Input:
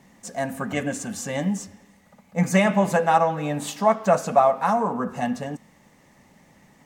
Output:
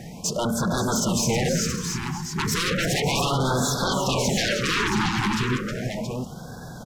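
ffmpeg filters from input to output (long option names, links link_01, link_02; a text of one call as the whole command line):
ffmpeg -i in.wav -filter_complex "[0:a]lowshelf=frequency=140:gain=4.5,alimiter=limit=-10dB:level=0:latency=1:release=118,aeval=exprs='0.316*sin(PI/2*6.31*val(0)/0.316)':channel_layout=same,acompressor=threshold=-19dB:ratio=3,asetrate=38170,aresample=44100,atempo=1.15535,asplit=2[link_01][link_02];[link_02]aecho=0:1:314|549|579|666|674:0.398|0.211|0.126|0.133|0.473[link_03];[link_01][link_03]amix=inputs=2:normalize=0,afftfilt=real='re*(1-between(b*sr/1024,540*pow(2400/540,0.5+0.5*sin(2*PI*0.34*pts/sr))/1.41,540*pow(2400/540,0.5+0.5*sin(2*PI*0.34*pts/sr))*1.41))':imag='im*(1-between(b*sr/1024,540*pow(2400/540,0.5+0.5*sin(2*PI*0.34*pts/sr))/1.41,540*pow(2400/540,0.5+0.5*sin(2*PI*0.34*pts/sr))*1.41))':win_size=1024:overlap=0.75,volume=-5dB" out.wav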